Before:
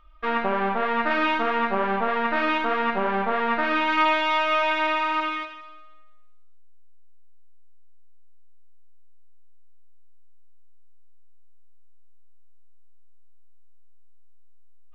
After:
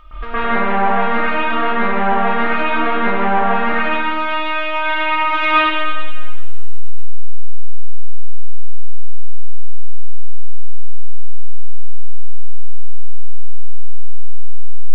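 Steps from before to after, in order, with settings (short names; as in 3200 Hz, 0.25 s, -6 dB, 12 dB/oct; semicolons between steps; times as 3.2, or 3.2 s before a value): negative-ratio compressor -34 dBFS, ratio -1; reverb RT60 1.4 s, pre-delay 0.11 s, DRR -14.5 dB; gain +5 dB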